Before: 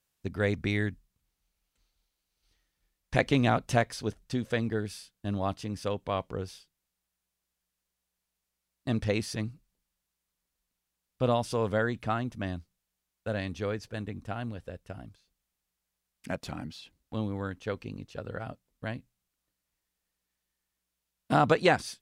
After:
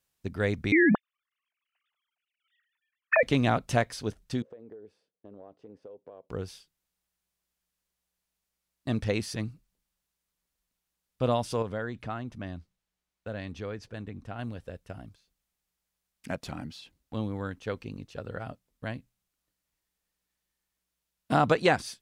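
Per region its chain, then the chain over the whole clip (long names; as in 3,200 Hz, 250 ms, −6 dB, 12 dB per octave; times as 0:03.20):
0:00.72–0:03.23: three sine waves on the formant tracks + downward expander −45 dBFS + envelope flattener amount 100%
0:04.42–0:06.30: resonant band-pass 460 Hz, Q 3.2 + downward compressor 16 to 1, threshold −42 dBFS
0:11.62–0:14.39: high-shelf EQ 7,400 Hz −10.5 dB + downward compressor 1.5 to 1, threshold −39 dBFS
whole clip: no processing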